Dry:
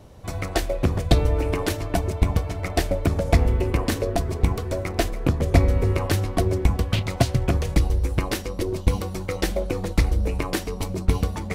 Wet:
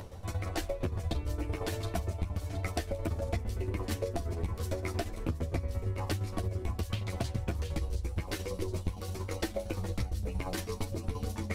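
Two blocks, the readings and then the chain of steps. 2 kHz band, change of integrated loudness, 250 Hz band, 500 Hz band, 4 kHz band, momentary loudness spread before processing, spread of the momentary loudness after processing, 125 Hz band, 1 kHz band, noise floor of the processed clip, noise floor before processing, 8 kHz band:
−11.5 dB, −12.0 dB, −12.0 dB, −11.5 dB, −11.0 dB, 7 LU, 2 LU, −11.0 dB, −12.0 dB, −43 dBFS, −34 dBFS, −10.5 dB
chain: shaped tremolo saw down 8.7 Hz, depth 70%
upward compression, threshold −35 dBFS
multi-voice chorus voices 4, 0.28 Hz, delay 11 ms, depth 2.1 ms
delay with a high-pass on its return 719 ms, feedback 31%, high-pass 4,400 Hz, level −5.5 dB
downward compressor 10 to 1, threshold −29 dBFS, peak gain reduction 15 dB

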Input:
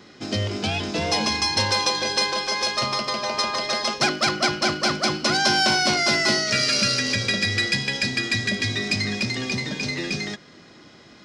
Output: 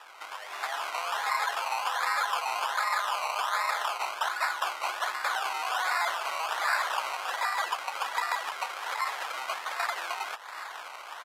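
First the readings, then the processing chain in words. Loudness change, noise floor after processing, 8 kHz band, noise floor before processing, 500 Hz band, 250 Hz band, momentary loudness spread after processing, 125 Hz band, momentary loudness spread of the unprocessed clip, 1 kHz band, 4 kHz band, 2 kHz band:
−8.5 dB, −44 dBFS, −12.5 dB, −49 dBFS, −12.5 dB, below −35 dB, 8 LU, below −40 dB, 8 LU, −1.0 dB, −14.5 dB, −7.0 dB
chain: in parallel at +2.5 dB: brickwall limiter −19 dBFS, peak gain reduction 10 dB
on the sum: downward compressor 12 to 1, threshold −30 dBFS, peak gain reduction 18 dB
echo ahead of the sound 153 ms −15 dB
automatic gain control gain up to 8.5 dB
dynamic equaliser 5,500 Hz, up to +4 dB, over −38 dBFS
sample-and-hold swept by an LFO 20×, swing 60% 1.3 Hz
gain into a clipping stage and back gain 17.5 dB
high-shelf EQ 4,300 Hz −11.5 dB
downsampling to 32,000 Hz
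high-pass filter 880 Hz 24 dB per octave

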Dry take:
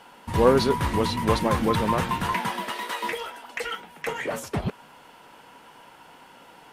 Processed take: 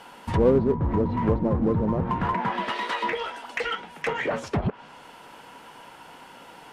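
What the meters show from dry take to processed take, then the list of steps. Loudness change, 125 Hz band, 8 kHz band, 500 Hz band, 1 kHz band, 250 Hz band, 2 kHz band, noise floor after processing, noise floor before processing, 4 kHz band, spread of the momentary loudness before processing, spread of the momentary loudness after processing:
0.0 dB, +2.0 dB, −11.0 dB, −0.5 dB, −2.0 dB, +2.0 dB, −0.5 dB, −48 dBFS, −51 dBFS, −4.0 dB, 13 LU, 9 LU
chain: treble cut that deepens with the level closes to 510 Hz, closed at −19.5 dBFS
in parallel at −6.5 dB: hard clipping −26.5 dBFS, distortion −6 dB

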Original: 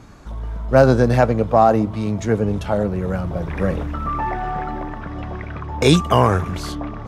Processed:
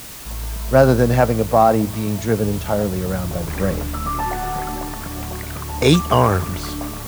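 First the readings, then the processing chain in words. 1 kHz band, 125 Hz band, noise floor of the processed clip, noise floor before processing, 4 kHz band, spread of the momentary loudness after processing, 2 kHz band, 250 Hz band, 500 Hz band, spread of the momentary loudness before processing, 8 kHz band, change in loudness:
0.0 dB, 0.0 dB, −30 dBFS, −32 dBFS, +1.0 dB, 14 LU, +0.5 dB, 0.0 dB, 0.0 dB, 16 LU, +6.5 dB, −0.5 dB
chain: background noise white −36 dBFS

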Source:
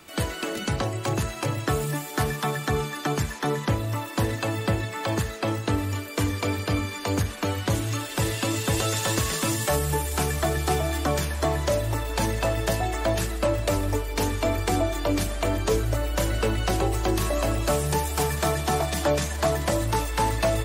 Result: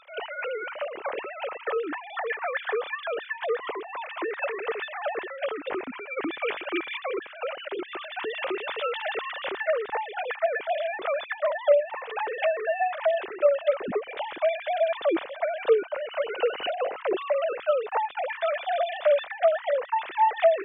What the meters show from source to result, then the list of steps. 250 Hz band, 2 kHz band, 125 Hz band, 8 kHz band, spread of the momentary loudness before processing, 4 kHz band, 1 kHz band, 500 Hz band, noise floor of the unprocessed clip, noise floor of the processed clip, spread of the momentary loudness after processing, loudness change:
−11.0 dB, 0.0 dB, below −35 dB, below −40 dB, 3 LU, −6.5 dB, 0.0 dB, +2.5 dB, −36 dBFS, −43 dBFS, 10 LU, −2.0 dB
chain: three sine waves on the formant tracks
level −2.5 dB

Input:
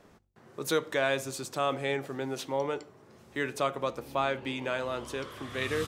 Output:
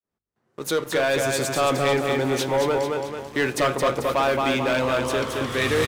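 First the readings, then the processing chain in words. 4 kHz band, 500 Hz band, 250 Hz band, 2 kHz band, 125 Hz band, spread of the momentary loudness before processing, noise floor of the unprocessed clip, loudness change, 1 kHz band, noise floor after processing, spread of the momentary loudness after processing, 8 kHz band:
+9.5 dB, +10.0 dB, +10.0 dB, +9.0 dB, +11.0 dB, 9 LU, −58 dBFS, +9.5 dB, +9.0 dB, −85 dBFS, 5 LU, +11.0 dB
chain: fade in at the beginning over 1.42 s
repeating echo 220 ms, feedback 45%, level −5 dB
leveller curve on the samples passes 3

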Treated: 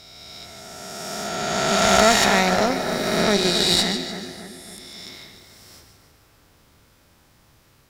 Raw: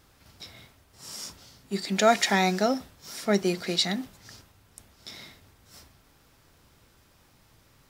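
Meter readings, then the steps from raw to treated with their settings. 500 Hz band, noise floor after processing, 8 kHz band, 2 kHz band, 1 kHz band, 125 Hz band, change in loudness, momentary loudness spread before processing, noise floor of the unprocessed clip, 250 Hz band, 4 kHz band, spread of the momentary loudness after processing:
+6.5 dB, −57 dBFS, +10.5 dB, +8.5 dB, +7.5 dB, +6.0 dB, +7.0 dB, 22 LU, −61 dBFS, +4.5 dB, +10.0 dB, 23 LU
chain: peak hold with a rise ahead of every peak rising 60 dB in 2.99 s
echo with a time of its own for lows and highs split 2,000 Hz, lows 279 ms, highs 148 ms, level −8 dB
harmonic generator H 4 −16 dB, 8 −27 dB, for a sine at −1 dBFS
level −1 dB

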